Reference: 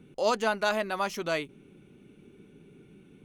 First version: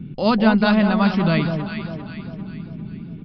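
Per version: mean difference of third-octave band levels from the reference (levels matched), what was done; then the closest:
8.5 dB: low shelf with overshoot 290 Hz +13.5 dB, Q 1.5
on a send: delay that swaps between a low-pass and a high-pass 199 ms, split 1,100 Hz, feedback 67%, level −5 dB
on the sum: downsampling to 11,025 Hz
level +7 dB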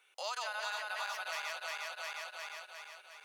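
19.0 dB: feedback delay that plays each chunk backwards 178 ms, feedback 74%, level −0.5 dB
Bessel high-pass filter 1,200 Hz, order 6
downward compressor 4 to 1, threshold −40 dBFS, peak gain reduction 12.5 dB
level +2 dB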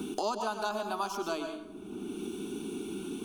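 12.0 dB: phaser with its sweep stopped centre 530 Hz, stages 6
dense smooth reverb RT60 0.55 s, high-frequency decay 0.7×, pre-delay 90 ms, DRR 6.5 dB
multiband upward and downward compressor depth 100%
level −1.5 dB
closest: first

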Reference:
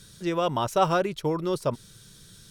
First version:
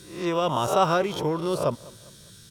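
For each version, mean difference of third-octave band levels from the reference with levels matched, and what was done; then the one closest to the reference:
4.0 dB: peak hold with a rise ahead of every peak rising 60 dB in 0.53 s
high-pass filter 43 Hz
repeating echo 200 ms, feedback 43%, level −22 dB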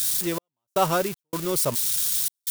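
13.5 dB: spike at every zero crossing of −19.5 dBFS
high-shelf EQ 11,000 Hz +3 dB
gate pattern "xx..xx.xxxxx." 79 BPM −60 dB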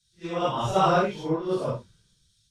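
8.5 dB: random phases in long frames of 200 ms
low-pass filter 7,300 Hz 12 dB per octave
multiband upward and downward expander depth 100%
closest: first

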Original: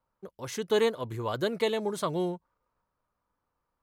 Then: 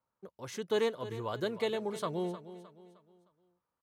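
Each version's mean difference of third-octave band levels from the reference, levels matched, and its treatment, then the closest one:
2.5 dB: high-pass filter 81 Hz
high-shelf EQ 8,300 Hz −5 dB
repeating echo 308 ms, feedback 39%, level −14 dB
level −5 dB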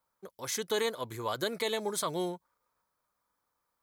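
5.0 dB: spectral tilt +2.5 dB per octave
notch filter 2,800 Hz, Q 8
brickwall limiter −20.5 dBFS, peak gain reduction 6 dB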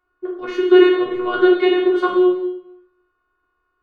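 10.5 dB: drawn EQ curve 110 Hz 0 dB, 170 Hz −16 dB, 380 Hz +13 dB, 800 Hz −6 dB, 1,200 Hz +9 dB, 3,300 Hz −1 dB, 8,100 Hz −28 dB
phases set to zero 361 Hz
dense smooth reverb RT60 0.74 s, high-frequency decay 0.95×, DRR −2.5 dB
level +7 dB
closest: first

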